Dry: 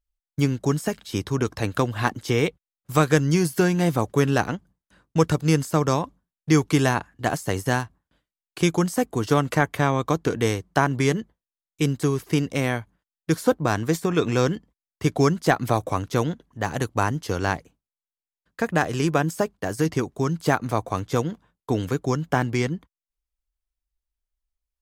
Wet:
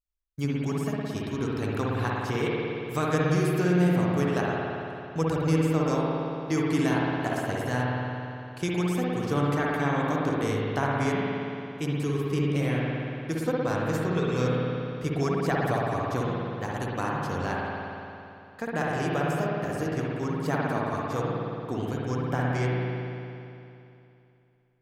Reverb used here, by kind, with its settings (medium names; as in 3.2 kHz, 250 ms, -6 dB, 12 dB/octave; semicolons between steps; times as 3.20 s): spring tank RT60 2.8 s, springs 56 ms, chirp 30 ms, DRR -4.5 dB; trim -10 dB